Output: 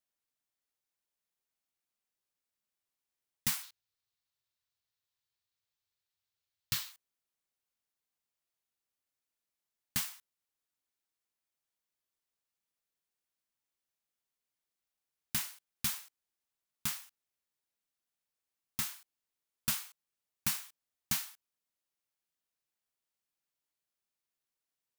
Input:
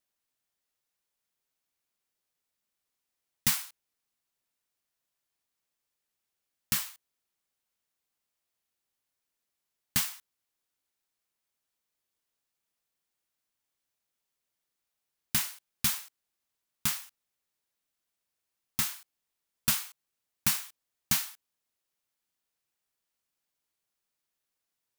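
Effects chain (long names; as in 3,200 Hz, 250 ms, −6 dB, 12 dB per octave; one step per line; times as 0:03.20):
0:03.63–0:06.92: graphic EQ with 15 bands 100 Hz +12 dB, 250 Hz −12 dB, 630 Hz −4 dB, 4,000 Hz +7 dB, 10,000 Hz −4 dB
level −6 dB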